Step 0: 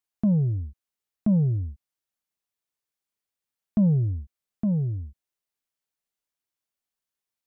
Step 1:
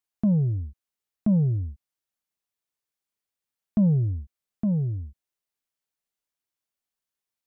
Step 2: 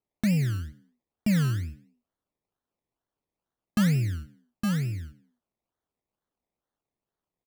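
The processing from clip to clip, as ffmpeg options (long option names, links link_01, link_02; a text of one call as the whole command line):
ffmpeg -i in.wav -af anull out.wav
ffmpeg -i in.wav -filter_complex "[0:a]acrusher=samples=24:mix=1:aa=0.000001:lfo=1:lforange=14.4:lforate=2.2,asplit=4[link_01][link_02][link_03][link_04];[link_02]adelay=90,afreqshift=57,volume=-20.5dB[link_05];[link_03]adelay=180,afreqshift=114,volume=-28.7dB[link_06];[link_04]adelay=270,afreqshift=171,volume=-36.9dB[link_07];[link_01][link_05][link_06][link_07]amix=inputs=4:normalize=0,volume=-2.5dB" out.wav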